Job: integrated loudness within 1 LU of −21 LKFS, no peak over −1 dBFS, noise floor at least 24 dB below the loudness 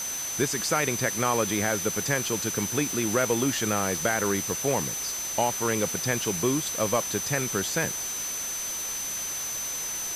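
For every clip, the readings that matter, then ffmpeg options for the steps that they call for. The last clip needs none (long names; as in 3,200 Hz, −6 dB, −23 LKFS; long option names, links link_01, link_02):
interfering tone 6,100 Hz; level of the tone −31 dBFS; background noise floor −32 dBFS; target noise floor −51 dBFS; integrated loudness −26.5 LKFS; sample peak −10.5 dBFS; target loudness −21.0 LKFS
→ -af "bandreject=frequency=6100:width=30"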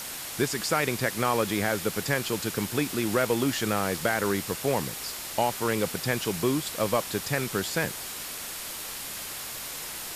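interfering tone none found; background noise floor −37 dBFS; target noise floor −52 dBFS
→ -af "afftdn=noise_reduction=15:noise_floor=-37"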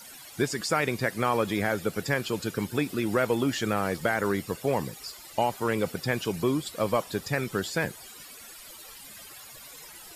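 background noise floor −47 dBFS; target noise floor −53 dBFS
→ -af "afftdn=noise_reduction=6:noise_floor=-47"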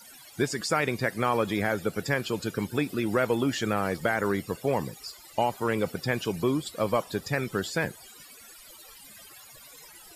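background noise floor −50 dBFS; target noise floor −53 dBFS
→ -af "afftdn=noise_reduction=6:noise_floor=-50"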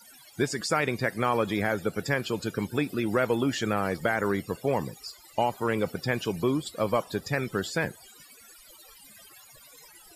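background noise floor −53 dBFS; integrated loudness −28.5 LKFS; sample peak −12.0 dBFS; target loudness −21.0 LKFS
→ -af "volume=7.5dB"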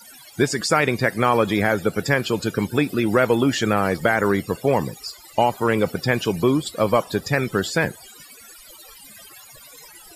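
integrated loudness −21.0 LKFS; sample peak −4.5 dBFS; background noise floor −46 dBFS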